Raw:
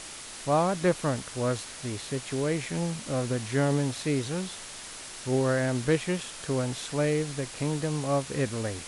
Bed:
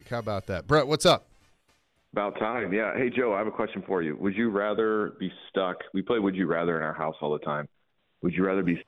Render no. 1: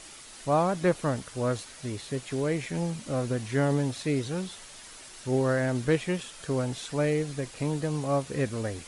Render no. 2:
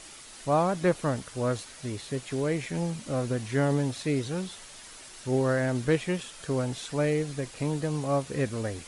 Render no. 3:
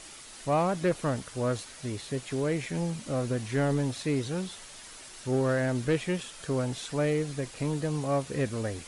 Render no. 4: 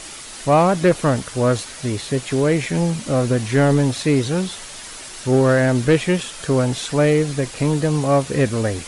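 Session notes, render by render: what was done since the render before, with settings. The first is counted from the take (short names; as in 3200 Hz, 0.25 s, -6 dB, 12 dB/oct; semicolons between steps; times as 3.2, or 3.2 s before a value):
denoiser 7 dB, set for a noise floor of -42 dBFS
nothing audible
soft clip -17.5 dBFS, distortion -20 dB
gain +11.5 dB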